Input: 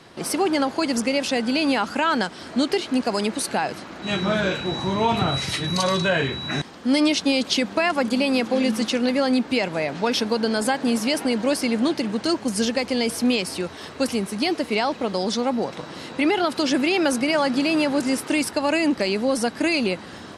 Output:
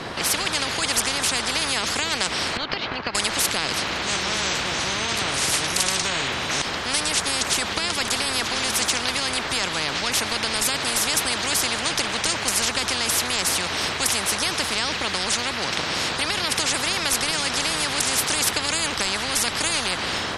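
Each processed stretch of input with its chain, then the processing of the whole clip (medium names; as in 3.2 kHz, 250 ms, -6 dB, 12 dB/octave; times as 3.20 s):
2.57–3.15 s: Bessel low-pass 3.2 kHz, order 6 + transient shaper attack +1 dB, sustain -9 dB + compression 5:1, threshold -29 dBFS
whole clip: treble shelf 6.5 kHz -8.5 dB; level rider gain up to 5 dB; spectrum-flattening compressor 10:1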